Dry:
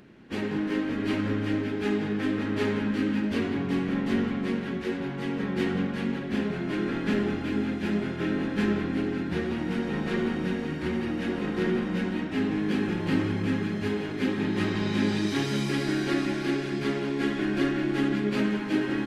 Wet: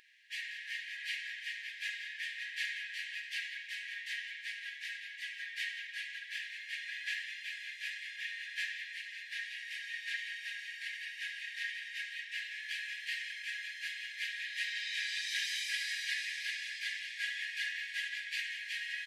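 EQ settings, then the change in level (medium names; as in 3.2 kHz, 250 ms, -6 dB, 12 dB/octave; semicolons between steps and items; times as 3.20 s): brick-wall FIR high-pass 1.6 kHz; 0.0 dB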